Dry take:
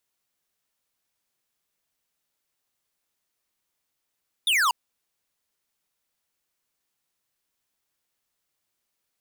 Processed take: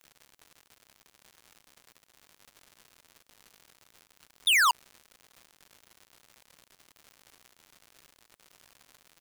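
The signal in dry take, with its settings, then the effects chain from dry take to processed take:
laser zap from 3700 Hz, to 910 Hz, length 0.24 s square, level -21 dB
crackle 180/s -40 dBFS

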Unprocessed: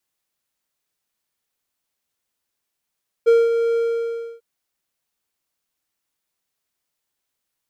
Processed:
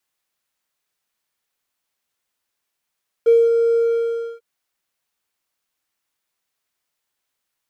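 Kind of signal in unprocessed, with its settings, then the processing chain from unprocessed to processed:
ADSR triangle 463 Hz, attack 22 ms, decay 0.206 s, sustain -7.5 dB, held 0.50 s, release 0.645 s -7 dBFS
high shelf 2500 Hz -8 dB; sample leveller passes 1; mismatched tape noise reduction encoder only

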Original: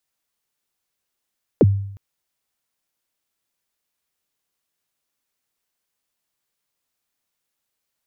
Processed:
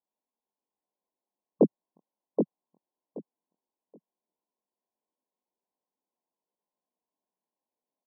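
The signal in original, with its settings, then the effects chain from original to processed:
kick drum length 0.36 s, from 560 Hz, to 99 Hz, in 36 ms, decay 0.71 s, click off, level -7 dB
chorus 2.3 Hz, delay 15.5 ms, depth 7.8 ms; brick-wall FIR band-pass 170–1100 Hz; feedback echo 0.776 s, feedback 18%, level -5 dB

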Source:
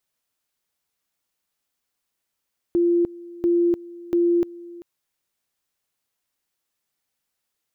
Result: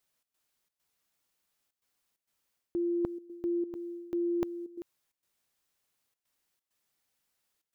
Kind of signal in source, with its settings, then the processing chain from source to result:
two-level tone 345 Hz -15.5 dBFS, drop 20.5 dB, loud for 0.30 s, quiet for 0.39 s, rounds 3
reverse; compressor 6:1, threshold -30 dBFS; reverse; step gate "xx.xxx.xxxxxx" 132 bpm -12 dB

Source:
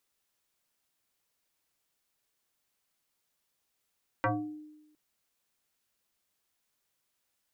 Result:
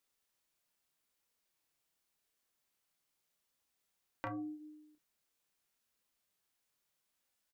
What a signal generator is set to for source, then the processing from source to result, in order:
FM tone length 0.71 s, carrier 304 Hz, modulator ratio 1.37, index 4.1, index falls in 0.47 s exponential, decay 1.03 s, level -23 dB
compressor 4:1, threshold -36 dBFS; flange 0.83 Hz, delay 3.5 ms, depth 3.5 ms, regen -68%; doubler 30 ms -6.5 dB

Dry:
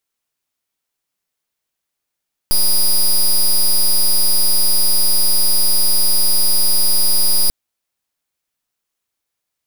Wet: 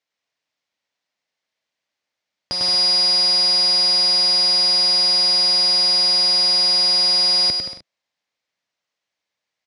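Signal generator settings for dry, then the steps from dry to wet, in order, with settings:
pulse 4880 Hz, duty 10% -12 dBFS 4.99 s
speaker cabinet 130–5800 Hz, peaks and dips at 150 Hz -4 dB, 230 Hz -3 dB, 380 Hz -6 dB, 590 Hz +4 dB, 1300 Hz -3 dB, 2000 Hz +4 dB; on a send: bouncing-ball echo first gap 0.1 s, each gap 0.75×, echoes 5

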